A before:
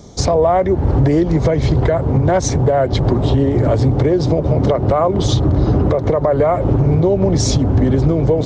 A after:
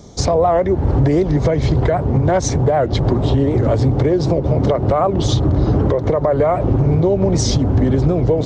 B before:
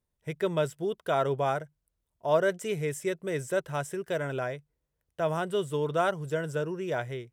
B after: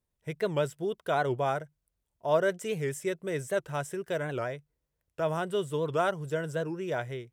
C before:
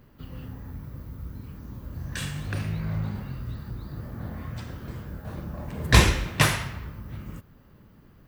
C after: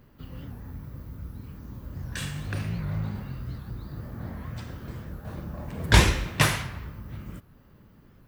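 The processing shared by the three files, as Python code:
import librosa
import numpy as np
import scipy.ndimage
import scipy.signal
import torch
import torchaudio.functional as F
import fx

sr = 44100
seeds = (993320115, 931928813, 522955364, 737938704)

y = fx.record_warp(x, sr, rpm=78.0, depth_cents=160.0)
y = y * librosa.db_to_amplitude(-1.0)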